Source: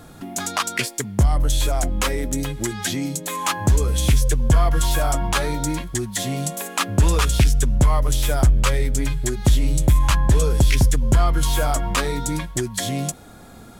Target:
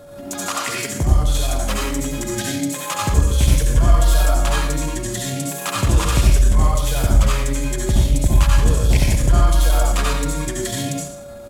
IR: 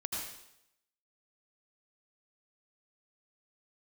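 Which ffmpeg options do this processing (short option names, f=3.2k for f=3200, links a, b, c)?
-filter_complex "[0:a]aeval=exprs='val(0)+0.0158*sin(2*PI*570*n/s)':c=same,bandreject=f=61.56:t=h:w=4,bandreject=f=123.12:t=h:w=4,bandreject=f=184.68:t=h:w=4,bandreject=f=246.24:t=h:w=4,bandreject=f=307.8:t=h:w=4,bandreject=f=369.36:t=h:w=4,bandreject=f=430.92:t=h:w=4,bandreject=f=492.48:t=h:w=4,bandreject=f=554.04:t=h:w=4,bandreject=f=615.6:t=h:w=4,bandreject=f=677.16:t=h:w=4,bandreject=f=738.72:t=h:w=4,bandreject=f=800.28:t=h:w=4,bandreject=f=861.84:t=h:w=4,bandreject=f=923.4:t=h:w=4,bandreject=f=984.96:t=h:w=4,bandreject=f=1.04652k:t=h:w=4,bandreject=f=1.10808k:t=h:w=4,bandreject=f=1.16964k:t=h:w=4,bandreject=f=1.2312k:t=h:w=4,bandreject=f=1.29276k:t=h:w=4,bandreject=f=1.35432k:t=h:w=4,bandreject=f=1.41588k:t=h:w=4,bandreject=f=1.47744k:t=h:w=4,bandreject=f=1.539k:t=h:w=4,bandreject=f=1.60056k:t=h:w=4,bandreject=f=1.66212k:t=h:w=4,bandreject=f=1.72368k:t=h:w=4,bandreject=f=1.78524k:t=h:w=4,bandreject=f=1.8468k:t=h:w=4,bandreject=f=1.90836k:t=h:w=4,bandreject=f=1.96992k:t=h:w=4,bandreject=f=2.03148k:t=h:w=4,bandreject=f=2.09304k:t=h:w=4,bandreject=f=2.1546k:t=h:w=4,bandreject=f=2.21616k:t=h:w=4,bandreject=f=2.27772k:t=h:w=4,bandreject=f=2.33928k:t=h:w=4[a];[1:a]atrim=start_sample=2205[b];[a][b]afir=irnorm=-1:irlink=0,atempo=1.2,volume=-1dB"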